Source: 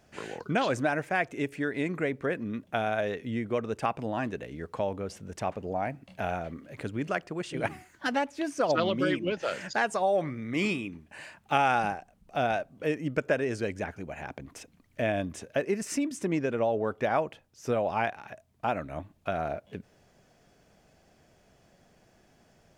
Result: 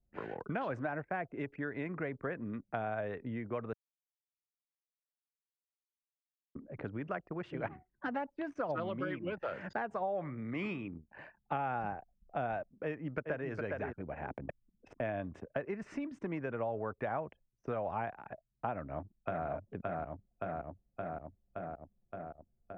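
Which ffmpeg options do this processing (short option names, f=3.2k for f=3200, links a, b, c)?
-filter_complex "[0:a]asplit=2[a][b];[b]afade=t=in:st=12.84:d=0.01,afade=t=out:st=13.51:d=0.01,aecho=0:1:410|820:0.501187|0.0501187[c];[a][c]amix=inputs=2:normalize=0,asplit=2[d][e];[e]afade=t=in:st=18.72:d=0.01,afade=t=out:st=19.47:d=0.01,aecho=0:1:570|1140|1710|2280|2850|3420|3990|4560|5130|5700|6270|6840:0.707946|0.530959|0.39822|0.298665|0.223998|0.167999|0.125999|0.0944994|0.0708745|0.0531559|0.0398669|0.0299002[f];[d][f]amix=inputs=2:normalize=0,asplit=5[g][h][i][j][k];[g]atrim=end=3.73,asetpts=PTS-STARTPTS,afade=t=out:st=3.726:d=0.004:c=hsin[l];[h]atrim=start=3.73:end=6.55,asetpts=PTS-STARTPTS,volume=0[m];[i]atrim=start=6.55:end=14.492,asetpts=PTS-STARTPTS,afade=t=in:d=0.004:c=hsin[n];[j]atrim=start=14.488:end=15.002,asetpts=PTS-STARTPTS,areverse[o];[k]atrim=start=14.998[p];[l][m][n]concat=n=3:v=0:a=1[q];[q][o]acrossfade=d=0.004:c1=hsin:c2=hsin[r];[r][p]acrossfade=d=0.004:c1=hsin:c2=hsin,anlmdn=0.0631,lowpass=1.4k,acrossover=split=130|810[s][t][u];[s]acompressor=threshold=-48dB:ratio=4[v];[t]acompressor=threshold=-40dB:ratio=4[w];[u]acompressor=threshold=-39dB:ratio=4[x];[v][w][x]amix=inputs=3:normalize=0"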